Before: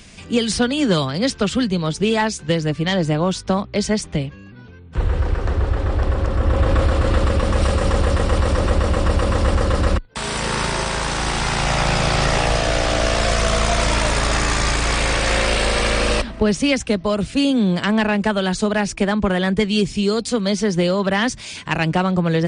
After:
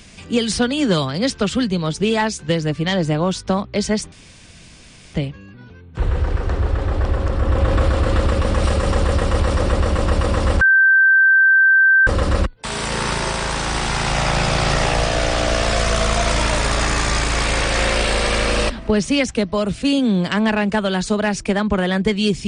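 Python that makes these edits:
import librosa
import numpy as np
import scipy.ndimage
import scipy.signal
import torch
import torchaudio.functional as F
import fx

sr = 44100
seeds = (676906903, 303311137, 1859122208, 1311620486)

y = fx.edit(x, sr, fx.insert_room_tone(at_s=4.12, length_s=1.02),
    fx.insert_tone(at_s=9.59, length_s=1.46, hz=1560.0, db=-9.0), tone=tone)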